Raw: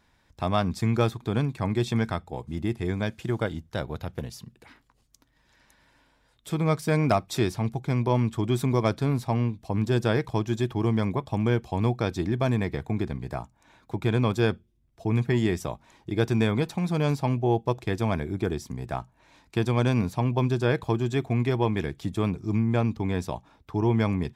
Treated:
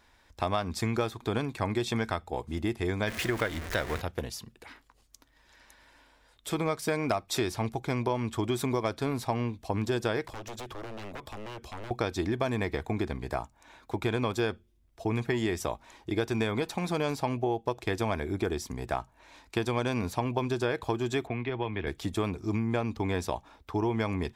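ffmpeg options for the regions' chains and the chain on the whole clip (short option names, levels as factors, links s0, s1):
-filter_complex "[0:a]asettb=1/sr,asplit=3[s0][s1][s2];[s0]atrim=end=3.074[s3];[s1]atrim=start=3.07:end=4.01,asetpts=PTS-STARTPTS,afade=t=in:d=0.004:c=qsin,afade=t=out:st=0.936:d=0.004:c=qsin,aeval=exprs='val(0)+0.5*0.02*sgn(val(0))':c=same,equalizer=f=1900:w=2:g=8.5,bandreject=f=830:w=12[s4];[s2]atrim=start=4.006[s5];[s3][s4]acrossfade=d=0.004:c1=hsin:c2=qsin[s6];[s6][s5]acrossfade=d=0.004:c1=qsin:c2=hsin,asettb=1/sr,asplit=3[s7][s8][s9];[s7]atrim=end=10.254[s10];[s8]atrim=start=10.25:end=11.91,asetpts=PTS-STARTPTS,afade=t=in:d=0.004:c=qsin,afade=t=out:st=1.656:d=0.004:c=qsin,bandreject=f=750:w=5.9,acompressor=threshold=0.0251:ratio=10:attack=3.2:release=140:knee=1:detection=peak,aeval=exprs='0.0158*(abs(mod(val(0)/0.0158+3,4)-2)-1)':c=same[s11];[s9]atrim=start=11.906[s12];[s10][s11]acrossfade=d=0.004:c1=hsin:c2=qsin[s13];[s13][s12]acrossfade=d=0.004:c1=qsin:c2=hsin,asettb=1/sr,asplit=3[s14][s15][s16];[s14]atrim=end=21.274[s17];[s15]atrim=start=21.27:end=21.87,asetpts=PTS-STARTPTS,afade=t=in:d=0.004:c=qsin,afade=t=out:st=0.596:d=0.004:c=qsin,lowpass=f=3300:w=0.5412,lowpass=f=3300:w=1.3066,acrossover=split=120|2100[s18][s19][s20];[s18]acompressor=threshold=0.0158:ratio=4[s21];[s19]acompressor=threshold=0.0251:ratio=4[s22];[s20]acompressor=threshold=0.00562:ratio=4[s23];[s21][s22][s23]amix=inputs=3:normalize=0[s24];[s16]atrim=start=21.866[s25];[s17][s24]acrossfade=d=0.004:c1=hsin:c2=qsin[s26];[s26][s25]acrossfade=d=0.004:c1=qsin:c2=hsin,equalizer=f=150:w=1.1:g=-11.5,acompressor=threshold=0.0355:ratio=6,volume=1.58"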